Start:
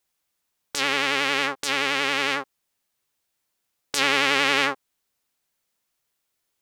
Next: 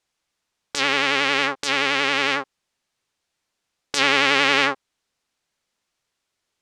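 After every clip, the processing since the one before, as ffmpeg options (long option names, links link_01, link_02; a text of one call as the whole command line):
ffmpeg -i in.wav -af "lowpass=6900,volume=3dB" out.wav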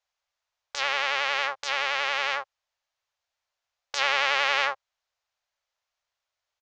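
ffmpeg -i in.wav -af "firequalizer=gain_entry='entry(100,0);entry(190,-27);entry(580,5);entry(2300,2);entry(6700,1);entry(9500,-19)':delay=0.05:min_phase=1,volume=-8.5dB" out.wav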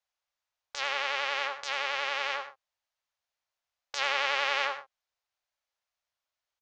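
ffmpeg -i in.wav -af "aecho=1:1:83|118:0.266|0.15,volume=-5dB" out.wav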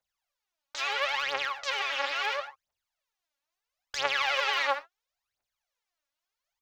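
ffmpeg -i in.wav -af "aphaser=in_gain=1:out_gain=1:delay=3.7:decay=0.76:speed=0.74:type=triangular,volume=-2.5dB" out.wav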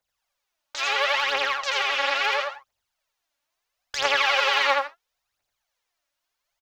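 ffmpeg -i in.wav -af "aecho=1:1:83:0.708,volume=4.5dB" out.wav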